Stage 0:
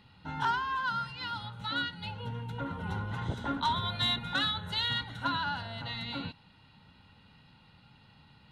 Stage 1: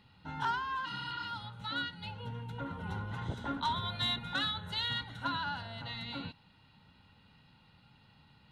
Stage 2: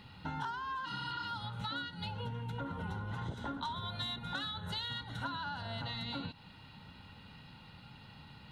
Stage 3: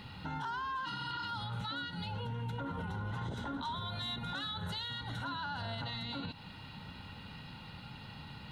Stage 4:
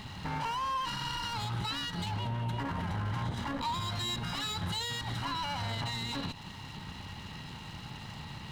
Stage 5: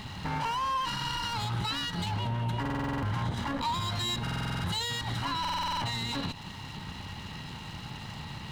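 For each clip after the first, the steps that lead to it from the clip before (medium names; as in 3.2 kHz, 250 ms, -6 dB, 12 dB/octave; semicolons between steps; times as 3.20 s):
spectral replace 0.88–1.23 s, 240–4800 Hz after; trim -3.5 dB
dynamic bell 2.3 kHz, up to -6 dB, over -54 dBFS, Q 2; compression 10:1, threshold -45 dBFS, peak gain reduction 16 dB; trim +8.5 dB
peak limiter -37 dBFS, peak gain reduction 9 dB; pre-echo 86 ms -23 dB; trim +5.5 dB
comb filter that takes the minimum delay 0.99 ms; trim +5.5 dB
buffer glitch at 2.61/4.22/5.40 s, samples 2048, times 8; trim +3 dB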